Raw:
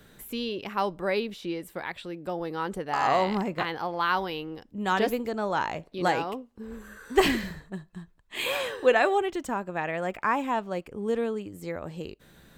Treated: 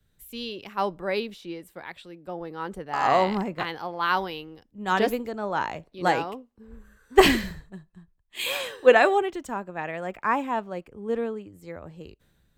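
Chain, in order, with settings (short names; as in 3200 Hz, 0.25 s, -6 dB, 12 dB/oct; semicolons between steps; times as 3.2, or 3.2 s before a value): three-band expander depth 70%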